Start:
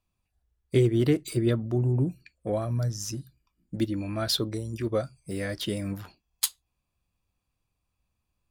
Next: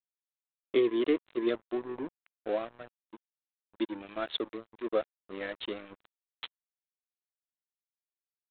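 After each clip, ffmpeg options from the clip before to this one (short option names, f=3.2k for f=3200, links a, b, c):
-af "highpass=f=300:w=0.5412,highpass=f=300:w=1.3066,aresample=8000,aeval=exprs='sgn(val(0))*max(abs(val(0))-0.0112,0)':c=same,aresample=44100"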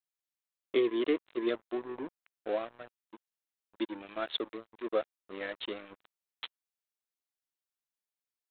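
-af "lowshelf=f=260:g=-6"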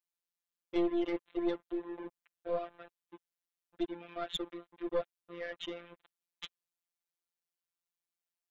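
-af "afftfilt=real='hypot(re,im)*cos(PI*b)':imag='0':win_size=1024:overlap=0.75,aeval=exprs='(tanh(22.4*val(0)+0.45)-tanh(0.45))/22.4':c=same,volume=3dB"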